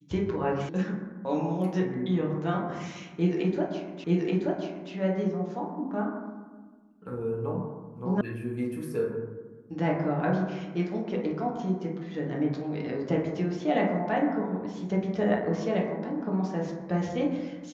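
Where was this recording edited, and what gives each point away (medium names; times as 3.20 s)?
0.69 s: sound stops dead
4.04 s: repeat of the last 0.88 s
8.21 s: sound stops dead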